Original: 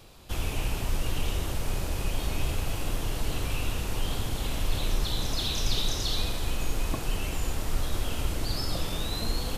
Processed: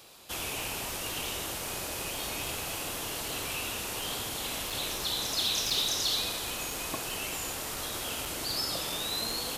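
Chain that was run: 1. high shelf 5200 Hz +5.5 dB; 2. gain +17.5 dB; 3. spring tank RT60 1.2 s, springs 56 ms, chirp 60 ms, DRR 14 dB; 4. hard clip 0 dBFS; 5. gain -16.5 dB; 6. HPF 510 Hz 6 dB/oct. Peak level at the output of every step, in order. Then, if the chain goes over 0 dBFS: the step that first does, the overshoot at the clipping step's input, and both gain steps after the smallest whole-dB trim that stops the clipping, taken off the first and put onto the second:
-14.0, +3.5, +4.0, 0.0, -16.5, -16.5 dBFS; step 2, 4.0 dB; step 2 +13.5 dB, step 5 -12.5 dB

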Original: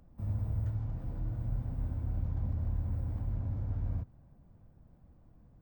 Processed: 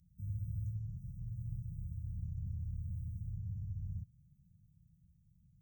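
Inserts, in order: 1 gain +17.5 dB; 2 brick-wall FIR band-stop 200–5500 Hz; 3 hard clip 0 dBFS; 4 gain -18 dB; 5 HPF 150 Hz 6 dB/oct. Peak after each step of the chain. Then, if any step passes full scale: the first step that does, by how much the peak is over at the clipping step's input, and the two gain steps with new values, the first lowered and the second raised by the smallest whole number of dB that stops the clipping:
-5.5, -6.0, -6.0, -24.0, -30.0 dBFS; no overload

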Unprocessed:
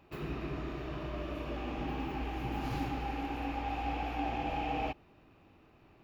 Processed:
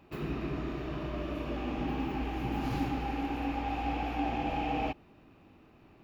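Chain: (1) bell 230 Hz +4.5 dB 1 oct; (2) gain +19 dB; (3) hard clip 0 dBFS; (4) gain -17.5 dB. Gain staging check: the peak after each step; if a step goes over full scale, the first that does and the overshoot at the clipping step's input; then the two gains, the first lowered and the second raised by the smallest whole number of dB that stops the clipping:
-22.0, -3.0, -3.0, -20.5 dBFS; no overload

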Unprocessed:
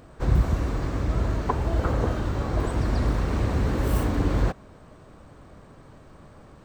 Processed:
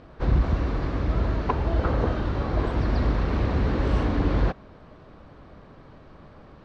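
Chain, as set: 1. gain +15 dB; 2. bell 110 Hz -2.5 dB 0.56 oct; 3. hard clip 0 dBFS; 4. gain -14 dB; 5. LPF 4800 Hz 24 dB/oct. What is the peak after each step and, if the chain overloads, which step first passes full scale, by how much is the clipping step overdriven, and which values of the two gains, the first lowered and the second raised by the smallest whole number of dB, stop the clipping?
+5.5, +5.0, 0.0, -14.0, -13.5 dBFS; step 1, 5.0 dB; step 1 +10 dB, step 4 -9 dB

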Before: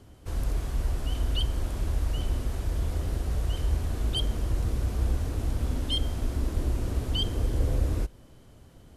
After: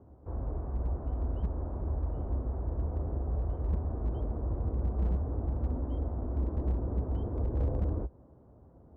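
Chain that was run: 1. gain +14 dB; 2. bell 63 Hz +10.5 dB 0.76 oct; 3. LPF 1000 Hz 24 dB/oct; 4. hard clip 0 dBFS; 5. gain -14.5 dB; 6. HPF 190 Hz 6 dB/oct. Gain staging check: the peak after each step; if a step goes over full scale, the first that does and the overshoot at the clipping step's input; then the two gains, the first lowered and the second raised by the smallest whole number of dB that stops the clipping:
-1.0, +5.5, +5.5, 0.0, -14.5, -19.5 dBFS; step 2, 5.5 dB; step 1 +8 dB, step 5 -8.5 dB

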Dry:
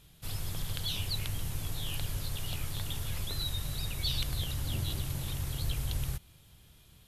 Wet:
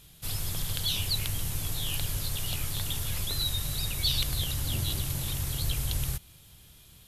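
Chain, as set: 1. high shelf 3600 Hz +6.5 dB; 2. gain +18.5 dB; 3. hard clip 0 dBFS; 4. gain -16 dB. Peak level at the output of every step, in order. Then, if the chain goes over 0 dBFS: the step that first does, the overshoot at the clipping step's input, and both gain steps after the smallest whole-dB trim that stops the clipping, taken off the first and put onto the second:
-14.0, +4.5, 0.0, -16.0 dBFS; step 2, 4.5 dB; step 2 +13.5 dB, step 4 -11 dB

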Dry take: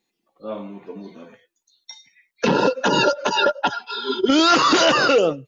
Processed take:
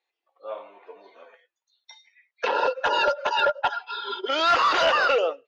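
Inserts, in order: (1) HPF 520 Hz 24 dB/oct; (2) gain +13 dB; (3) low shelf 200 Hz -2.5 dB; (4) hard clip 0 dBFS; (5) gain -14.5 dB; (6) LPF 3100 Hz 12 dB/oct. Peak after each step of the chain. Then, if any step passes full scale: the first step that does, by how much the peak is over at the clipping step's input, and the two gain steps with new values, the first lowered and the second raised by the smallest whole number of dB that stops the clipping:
-5.0, +8.0, +8.0, 0.0, -14.5, -14.0 dBFS; step 2, 8.0 dB; step 2 +5 dB, step 5 -6.5 dB

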